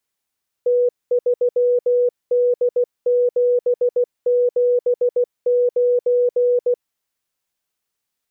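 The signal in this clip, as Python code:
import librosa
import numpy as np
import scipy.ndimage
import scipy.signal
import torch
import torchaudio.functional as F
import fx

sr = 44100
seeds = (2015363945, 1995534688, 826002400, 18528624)

y = fx.morse(sr, text='T3D779', wpm=16, hz=490.0, level_db=-13.0)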